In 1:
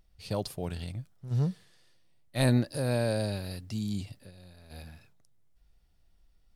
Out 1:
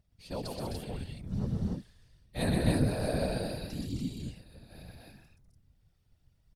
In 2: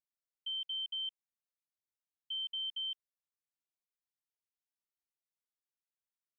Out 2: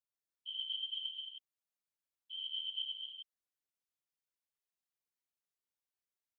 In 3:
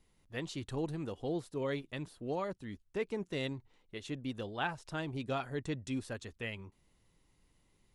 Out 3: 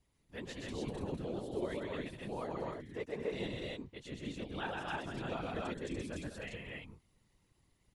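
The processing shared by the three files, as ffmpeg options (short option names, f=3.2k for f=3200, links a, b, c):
-af "aecho=1:1:125.4|198.3|259.5|291.5:0.708|0.355|0.562|0.794,afftfilt=real='hypot(re,im)*cos(2*PI*random(0))':imag='hypot(re,im)*sin(2*PI*random(1))':win_size=512:overlap=0.75"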